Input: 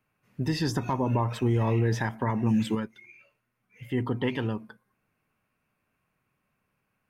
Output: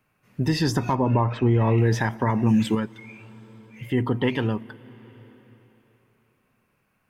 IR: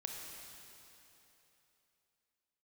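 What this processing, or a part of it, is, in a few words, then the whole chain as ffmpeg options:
ducked reverb: -filter_complex "[0:a]asplit=3[a][b][c];[1:a]atrim=start_sample=2205[d];[b][d]afir=irnorm=-1:irlink=0[e];[c]apad=whole_len=312700[f];[e][f]sidechaincompress=threshold=-34dB:ratio=8:attack=16:release=806,volume=-8dB[g];[a][g]amix=inputs=2:normalize=0,asettb=1/sr,asplit=3[h][i][j];[h]atrim=end=0.954[k];[i]atrim=start=0.95:end=1.78,asetpts=PTS-STARTPTS,afade=t=in:d=0.004:c=qsin,afade=t=out:st=0.826:d=0.004:c=qsin,lowpass=2.9k[l];[j]atrim=start=1.776[m];[k][l]acrossfade=d=0.004:c1=hsin:c2=qsin[n];[n][m]acrossfade=d=0.004:c1=qsin:c2=hsin,volume=4.5dB"

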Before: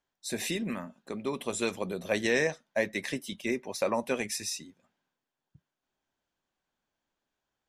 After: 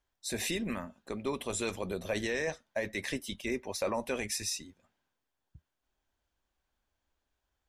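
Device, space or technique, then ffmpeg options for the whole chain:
car stereo with a boomy subwoofer: -af "lowshelf=f=100:t=q:w=1.5:g=11.5,alimiter=limit=-23dB:level=0:latency=1:release=13"

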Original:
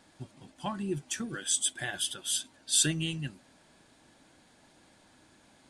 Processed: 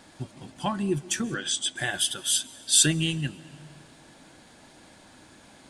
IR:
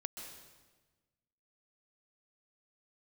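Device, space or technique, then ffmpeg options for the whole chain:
ducked reverb: -filter_complex "[0:a]asplit=3[a][b][c];[1:a]atrim=start_sample=2205[d];[b][d]afir=irnorm=-1:irlink=0[e];[c]apad=whole_len=251365[f];[e][f]sidechaincompress=threshold=-40dB:ratio=5:attack=16:release=520,volume=-4.5dB[g];[a][g]amix=inputs=2:normalize=0,asettb=1/sr,asplit=3[h][i][j];[h]atrim=end=1.344[k];[i]atrim=start=1.34:end=1.76,asetpts=PTS-STARTPTS,afade=t=in:d=0.004:c=qsin,afade=t=out:st=0.416:d=0.004:c=qsin,lowpass=5.2k[l];[j]atrim=start=1.756[m];[k][l]acrossfade=d=0.004:c1=hsin:c2=qsin[n];[n][m]acrossfade=d=0.004:c1=qsin:c2=hsin,volume=5.5dB"

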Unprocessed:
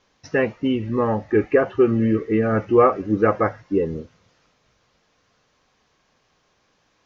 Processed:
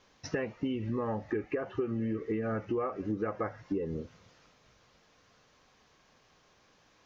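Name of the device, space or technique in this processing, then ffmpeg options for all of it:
serial compression, leveller first: -af "acompressor=threshold=-19dB:ratio=2,acompressor=threshold=-31dB:ratio=5"

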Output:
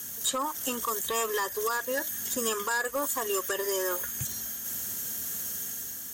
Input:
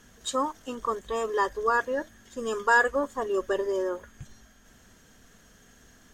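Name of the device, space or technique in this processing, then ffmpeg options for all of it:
FM broadcast chain: -filter_complex "[0:a]highpass=f=73:w=0.5412,highpass=f=73:w=1.3066,dynaudnorm=f=110:g=9:m=4.5dB,acrossover=split=1200|2800[a][b][c];[a]acompressor=threshold=-36dB:ratio=4[d];[b]acompressor=threshold=-35dB:ratio=4[e];[c]acompressor=threshold=-52dB:ratio=4[f];[d][e][f]amix=inputs=3:normalize=0,aemphasis=mode=production:type=50fm,alimiter=level_in=0.5dB:limit=-24dB:level=0:latency=1:release=93,volume=-0.5dB,asoftclip=type=hard:threshold=-28dB,lowpass=f=15k:w=0.5412,lowpass=f=15k:w=1.3066,aemphasis=mode=production:type=50fm,volume=4.5dB"

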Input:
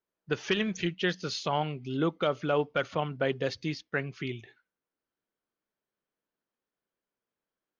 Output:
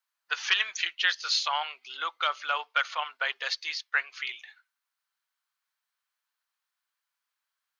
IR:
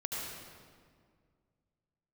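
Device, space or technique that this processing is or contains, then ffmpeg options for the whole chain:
headphones lying on a table: -af "highpass=f=1k:w=0.5412,highpass=f=1k:w=1.3066,equalizer=f=4.2k:t=o:w=0.3:g=4,volume=7dB"

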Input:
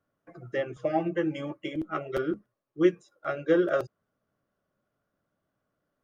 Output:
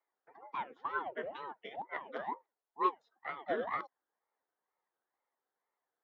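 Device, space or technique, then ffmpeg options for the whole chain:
voice changer toy: -af "aeval=exprs='val(0)*sin(2*PI*420*n/s+420*0.75/2.1*sin(2*PI*2.1*n/s))':c=same,highpass=590,equalizer=f=620:t=q:w=4:g=-4,equalizer=f=1.3k:t=q:w=4:g=-4,equalizer=f=2.6k:t=q:w=4:g=-10,lowpass=f=3.7k:w=0.5412,lowpass=f=3.7k:w=1.3066,volume=-2dB"

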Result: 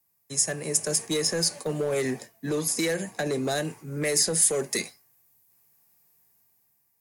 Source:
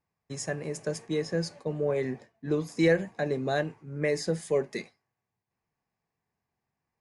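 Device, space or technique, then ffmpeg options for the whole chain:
FM broadcast chain: -filter_complex "[0:a]asettb=1/sr,asplit=3[a][b][c];[a]atrim=end=2.494[d];[b]atrim=start=2.49:end=3.58,asetpts=PTS-STARTPTS,afade=t=in:d=0.004:c=qsin,afade=t=out:st=1.086:d=0.004:c=qsin,highshelf=f=4.8k:g=-4.5[e];[c]atrim=start=3.576[f];[d][e]acrossfade=d=0.004:c1=hsin:c2=qsin[g];[g][f]acrossfade=d=0.004:c1=qsin:c2=hsin,highpass=71,dynaudnorm=f=320:g=5:m=7.5dB,acrossover=split=150|370|4000[h][i][j][k];[h]acompressor=threshold=-42dB:ratio=4[l];[i]acompressor=threshold=-29dB:ratio=4[m];[j]acompressor=threshold=-23dB:ratio=4[n];[k]acompressor=threshold=-37dB:ratio=4[o];[l][m][n][o]amix=inputs=4:normalize=0,aemphasis=mode=production:type=50fm,alimiter=limit=-18dB:level=0:latency=1:release=41,asoftclip=type=hard:threshold=-21.5dB,lowpass=f=15k:w=0.5412,lowpass=f=15k:w=1.3066,aemphasis=mode=production:type=50fm"

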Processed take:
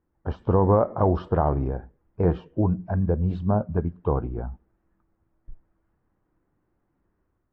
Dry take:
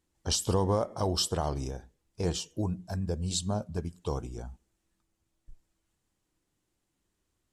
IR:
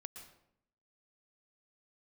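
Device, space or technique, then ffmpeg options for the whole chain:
action camera in a waterproof case: -af "lowpass=f=1.6k:w=0.5412,lowpass=f=1.6k:w=1.3066,dynaudnorm=f=360:g=3:m=5dB,volume=4dB" -ar 24000 -c:a aac -b:a 48k

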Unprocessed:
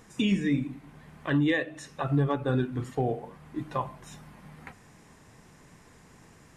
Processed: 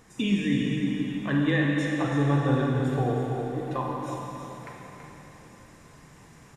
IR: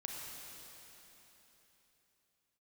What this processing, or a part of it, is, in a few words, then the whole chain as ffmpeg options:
cave: -filter_complex "[0:a]aecho=1:1:330:0.355[a];[1:a]atrim=start_sample=2205[b];[a][b]afir=irnorm=-1:irlink=0,volume=3dB"

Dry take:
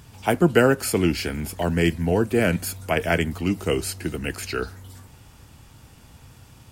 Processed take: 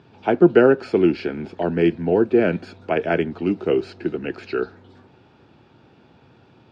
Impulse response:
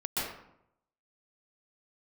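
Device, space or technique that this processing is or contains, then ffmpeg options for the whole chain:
kitchen radio: -af "highpass=190,equalizer=f=370:t=q:w=4:g=7,equalizer=f=1.1k:t=q:w=4:g=-6,equalizer=f=2k:t=q:w=4:g=-9,equalizer=f=3k:t=q:w=4:g=-7,lowpass=f=3.4k:w=0.5412,lowpass=f=3.4k:w=1.3066,volume=2dB"

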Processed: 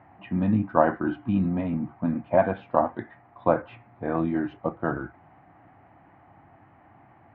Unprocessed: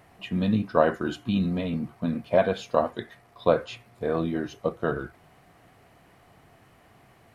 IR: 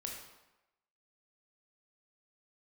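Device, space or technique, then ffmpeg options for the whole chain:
bass cabinet: -filter_complex "[0:a]highpass=63,equalizer=f=99:t=q:w=4:g=4,equalizer=f=300:t=q:w=4:g=7,equalizer=f=440:t=q:w=4:g=-9,equalizer=f=840:t=q:w=4:g=9,lowpass=f=2.1k:w=0.5412,lowpass=f=2.1k:w=1.3066,asettb=1/sr,asplit=3[a][b][c];[a]atrim=end=3.624[d];[b]atrim=start=3.62:end=4.57,asetpts=PTS-STARTPTS,afade=t=in:d=0.004:c=qsin,afade=t=out:st=0.946:d=0.004:c=qsin,adynamicequalizer=threshold=0.00631:dfrequency=2100:dqfactor=0.7:tfrequency=2100:tqfactor=0.7:attack=5:release=100:ratio=0.375:range=3:mode=boostabove:tftype=highshelf[e];[c]atrim=start=4.566[f];[d][e]acrossfade=d=0.004:c1=hsin:c2=qsin[g];[g][f]acrossfade=d=0.004:c1=qsin:c2=hsin"

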